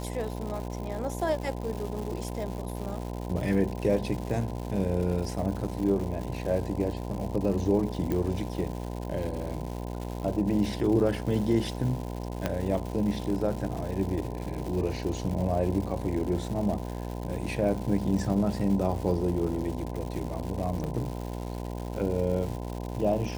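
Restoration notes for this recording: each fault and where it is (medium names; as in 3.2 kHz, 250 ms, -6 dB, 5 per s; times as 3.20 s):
buzz 60 Hz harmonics 17 -35 dBFS
crackle 280 per s -35 dBFS
8.12 s: pop
12.46 s: pop -13 dBFS
20.84 s: pop -22 dBFS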